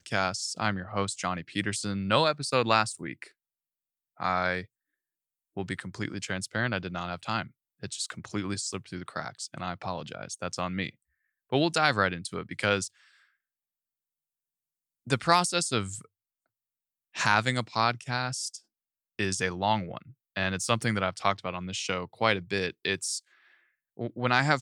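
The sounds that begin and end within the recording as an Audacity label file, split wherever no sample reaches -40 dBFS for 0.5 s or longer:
4.200000	4.640000	sound
5.570000	10.900000	sound
11.520000	12.880000	sound
15.070000	16.010000	sound
17.150000	18.570000	sound
19.190000	23.190000	sound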